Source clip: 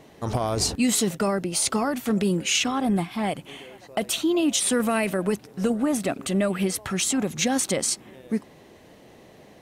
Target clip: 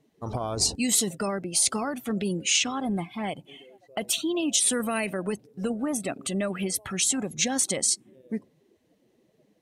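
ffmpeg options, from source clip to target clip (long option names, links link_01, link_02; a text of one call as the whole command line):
ffmpeg -i in.wav -af "afftdn=noise_reduction=19:noise_floor=-38,highshelf=frequency=2600:gain=8,volume=-5.5dB" out.wav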